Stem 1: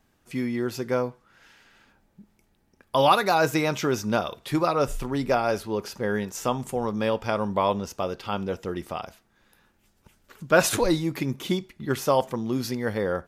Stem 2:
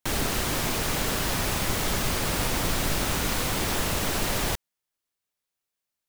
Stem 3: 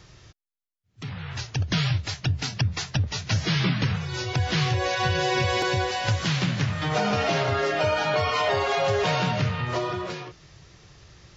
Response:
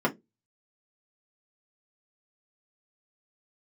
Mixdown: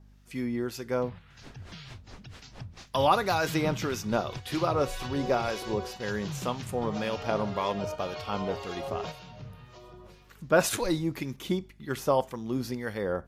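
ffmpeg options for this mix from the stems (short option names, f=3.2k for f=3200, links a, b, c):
-filter_complex "[0:a]aeval=exprs='val(0)+0.00316*(sin(2*PI*50*n/s)+sin(2*PI*2*50*n/s)/2+sin(2*PI*3*50*n/s)/3+sin(2*PI*4*50*n/s)/4+sin(2*PI*5*50*n/s)/5)':c=same,volume=-2.5dB,asplit=2[a][b];[1:a]lowpass=5.1k,aeval=exprs='val(0)*pow(10,-26*(0.5-0.5*cos(2*PI*4.5*n/s))/20)':c=same,adelay=1250,volume=-16.5dB[c];[2:a]adynamicequalizer=threshold=0.00708:dfrequency=1800:dqfactor=1.5:tfrequency=1800:tqfactor=1.5:attack=5:release=100:ratio=0.375:range=3.5:mode=cutabove:tftype=bell,volume=-10.5dB[d];[b]apad=whole_len=501139[e];[d][e]sidechaingate=range=-8dB:threshold=-42dB:ratio=16:detection=peak[f];[a][c][f]amix=inputs=3:normalize=0,acrossover=split=1300[g][h];[g]aeval=exprs='val(0)*(1-0.5/2+0.5/2*cos(2*PI*1.9*n/s))':c=same[i];[h]aeval=exprs='val(0)*(1-0.5/2-0.5/2*cos(2*PI*1.9*n/s))':c=same[j];[i][j]amix=inputs=2:normalize=0"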